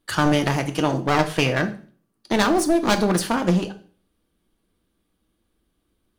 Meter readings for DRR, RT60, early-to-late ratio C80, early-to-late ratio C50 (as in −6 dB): 7.0 dB, 0.45 s, 18.0 dB, 14.0 dB